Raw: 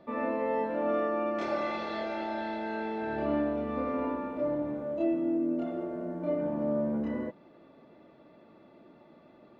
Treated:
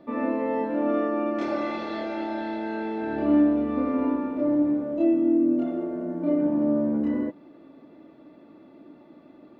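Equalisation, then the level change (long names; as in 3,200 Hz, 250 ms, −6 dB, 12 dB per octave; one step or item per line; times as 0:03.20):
parametric band 290 Hz +11.5 dB 0.43 octaves
+1.5 dB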